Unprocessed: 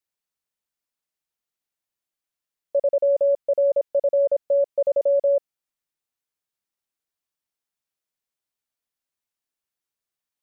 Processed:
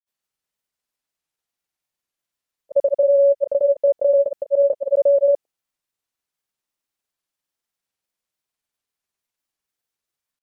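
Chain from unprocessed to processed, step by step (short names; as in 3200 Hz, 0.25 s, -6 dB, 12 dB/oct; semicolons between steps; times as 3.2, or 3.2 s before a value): grains 0.1 s, grains 20/s, spray 0.1 s, pitch spread up and down by 0 st; gain +5 dB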